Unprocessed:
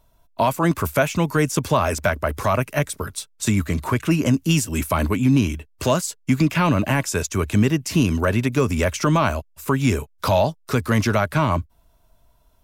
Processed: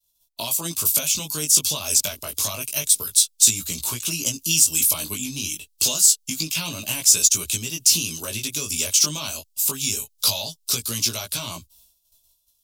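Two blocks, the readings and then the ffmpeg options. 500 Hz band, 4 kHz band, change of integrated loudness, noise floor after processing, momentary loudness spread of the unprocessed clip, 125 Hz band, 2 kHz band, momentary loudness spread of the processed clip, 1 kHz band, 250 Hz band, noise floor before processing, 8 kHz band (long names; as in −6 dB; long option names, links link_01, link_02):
−15.5 dB, +9.0 dB, +1.5 dB, −67 dBFS, 6 LU, −15.5 dB, −7.5 dB, 12 LU, −15.5 dB, −15.5 dB, −58 dBFS, +14.0 dB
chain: -af "agate=range=-33dB:threshold=-48dB:ratio=3:detection=peak,acompressor=threshold=-20dB:ratio=6,flanger=delay=17:depth=3.1:speed=0.27,aexciter=amount=8:drive=10:freq=2900,volume=-7.5dB"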